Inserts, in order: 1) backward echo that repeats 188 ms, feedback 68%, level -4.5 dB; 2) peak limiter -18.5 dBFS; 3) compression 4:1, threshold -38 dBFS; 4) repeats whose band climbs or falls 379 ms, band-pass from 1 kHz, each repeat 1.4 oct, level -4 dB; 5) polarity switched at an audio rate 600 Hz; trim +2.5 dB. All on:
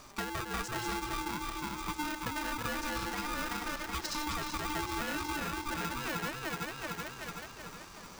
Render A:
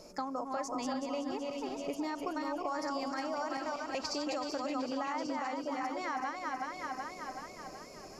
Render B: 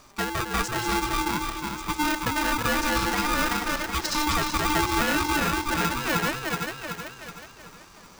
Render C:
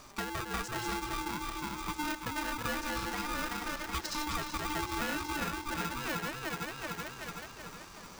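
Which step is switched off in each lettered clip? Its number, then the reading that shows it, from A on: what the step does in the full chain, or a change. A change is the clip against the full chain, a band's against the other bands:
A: 5, 125 Hz band -15.0 dB; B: 3, mean gain reduction 8.0 dB; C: 2, crest factor change +1.5 dB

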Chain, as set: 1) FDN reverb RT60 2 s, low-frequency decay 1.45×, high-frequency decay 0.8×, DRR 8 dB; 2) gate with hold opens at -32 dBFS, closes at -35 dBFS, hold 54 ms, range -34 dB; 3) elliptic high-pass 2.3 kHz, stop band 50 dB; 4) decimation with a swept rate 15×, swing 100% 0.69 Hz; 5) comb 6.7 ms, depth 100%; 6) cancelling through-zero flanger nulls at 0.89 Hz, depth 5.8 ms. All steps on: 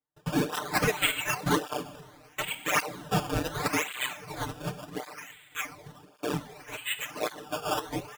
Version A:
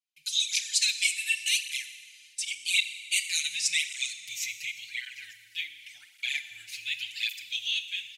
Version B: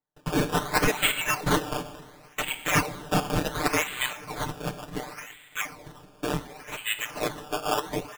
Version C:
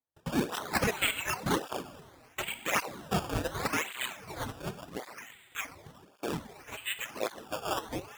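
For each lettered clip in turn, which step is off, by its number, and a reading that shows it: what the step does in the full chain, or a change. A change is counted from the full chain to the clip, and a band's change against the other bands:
4, crest factor change +1.5 dB; 6, loudness change +3.0 LU; 5, crest factor change +2.0 dB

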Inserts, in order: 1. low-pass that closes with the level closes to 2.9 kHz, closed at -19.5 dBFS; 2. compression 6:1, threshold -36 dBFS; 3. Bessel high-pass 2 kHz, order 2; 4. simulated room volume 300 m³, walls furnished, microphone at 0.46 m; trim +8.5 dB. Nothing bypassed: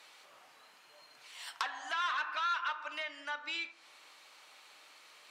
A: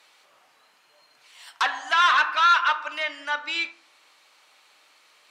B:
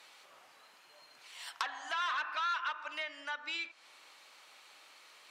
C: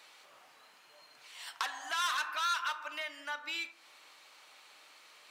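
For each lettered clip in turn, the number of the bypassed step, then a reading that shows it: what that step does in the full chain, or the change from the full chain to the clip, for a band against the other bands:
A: 2, mean gain reduction 5.0 dB; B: 4, echo-to-direct -12.0 dB to none; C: 1, 8 kHz band +8.5 dB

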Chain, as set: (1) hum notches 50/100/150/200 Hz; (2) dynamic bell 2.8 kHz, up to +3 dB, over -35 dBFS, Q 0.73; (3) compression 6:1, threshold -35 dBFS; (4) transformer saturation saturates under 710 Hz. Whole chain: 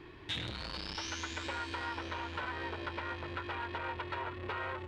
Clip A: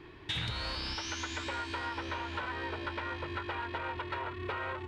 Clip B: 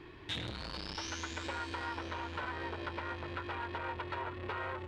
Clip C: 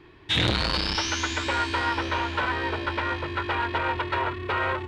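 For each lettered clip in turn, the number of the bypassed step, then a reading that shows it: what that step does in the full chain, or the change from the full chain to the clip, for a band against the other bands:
4, crest factor change -2.0 dB; 2, 4 kHz band -2.0 dB; 3, mean gain reduction 10.5 dB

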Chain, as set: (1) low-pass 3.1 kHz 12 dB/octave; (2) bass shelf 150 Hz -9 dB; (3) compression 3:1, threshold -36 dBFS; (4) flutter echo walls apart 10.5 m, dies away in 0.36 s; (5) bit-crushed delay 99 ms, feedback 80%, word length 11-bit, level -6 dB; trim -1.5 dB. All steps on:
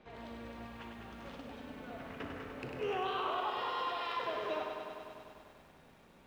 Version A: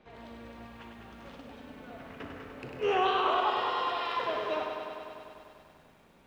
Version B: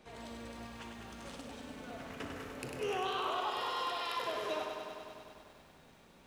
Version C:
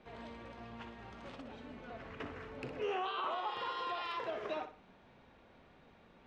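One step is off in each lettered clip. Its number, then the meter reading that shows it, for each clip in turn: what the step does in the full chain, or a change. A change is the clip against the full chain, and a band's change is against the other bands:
3, mean gain reduction 2.0 dB; 1, 4 kHz band +3.5 dB; 5, momentary loudness spread change -1 LU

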